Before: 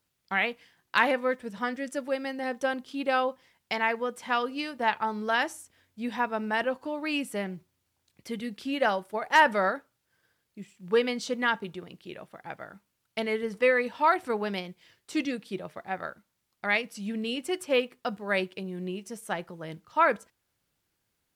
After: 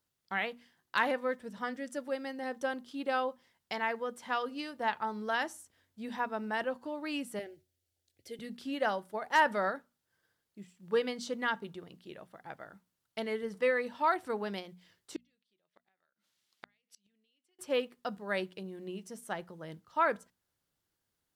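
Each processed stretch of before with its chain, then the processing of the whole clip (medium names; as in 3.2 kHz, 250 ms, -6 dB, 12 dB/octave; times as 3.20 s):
7.39–8.39 s: peaking EQ 93 Hz +7.5 dB 0.28 oct + static phaser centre 440 Hz, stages 4
15.16–17.59 s: frequency weighting D + compression 5:1, threshold -30 dBFS + inverted gate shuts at -29 dBFS, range -37 dB
whole clip: peaking EQ 2.4 kHz -5 dB 0.39 oct; hum notches 60/120/180/240 Hz; trim -5.5 dB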